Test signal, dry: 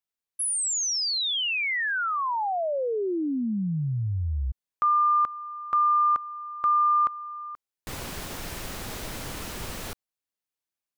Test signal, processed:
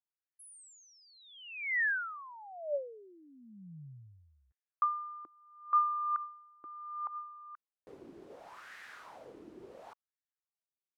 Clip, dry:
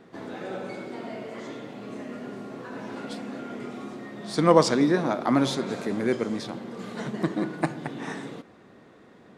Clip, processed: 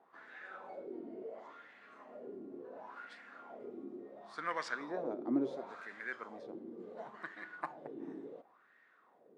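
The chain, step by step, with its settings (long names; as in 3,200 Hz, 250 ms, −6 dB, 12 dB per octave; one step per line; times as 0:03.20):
high-shelf EQ 3,600 Hz +7 dB
LFO wah 0.71 Hz 320–1,800 Hz, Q 4.4
level −3 dB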